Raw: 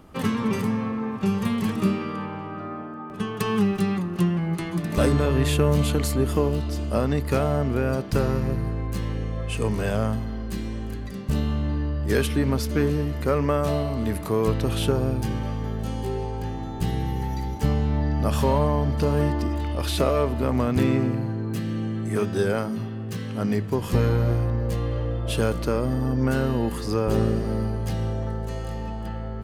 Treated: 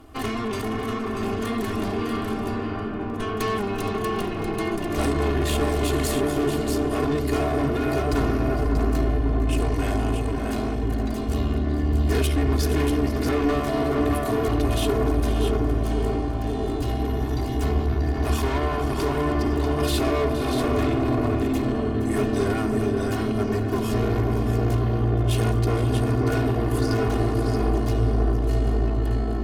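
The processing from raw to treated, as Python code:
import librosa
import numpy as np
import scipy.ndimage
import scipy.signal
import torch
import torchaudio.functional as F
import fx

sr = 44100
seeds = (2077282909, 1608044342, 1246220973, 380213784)

y = fx.notch(x, sr, hz=380.0, q=12.0)
y = fx.echo_multitap(y, sr, ms=(71, 468, 636), db=(-19.0, -14.0, -6.5))
y = fx.tube_stage(y, sr, drive_db=26.0, bias=0.6)
y = y + 0.89 * np.pad(y, (int(2.8 * sr / 1000.0), 0))[:len(y)]
y = fx.echo_filtered(y, sr, ms=541, feedback_pct=83, hz=1000.0, wet_db=-3.5)
y = y * 10.0 ** (3.0 / 20.0)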